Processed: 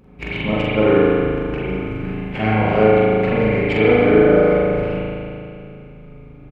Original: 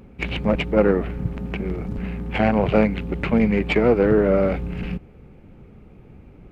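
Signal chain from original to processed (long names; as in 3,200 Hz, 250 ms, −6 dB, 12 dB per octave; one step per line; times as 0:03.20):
double-tracking delay 44 ms −4 dB
spring reverb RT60 2.5 s, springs 37 ms, chirp 40 ms, DRR −7.5 dB
level −5 dB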